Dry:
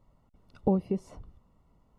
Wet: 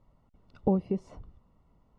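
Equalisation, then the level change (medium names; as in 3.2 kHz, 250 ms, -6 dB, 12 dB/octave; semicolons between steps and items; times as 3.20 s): distance through air 77 m; 0.0 dB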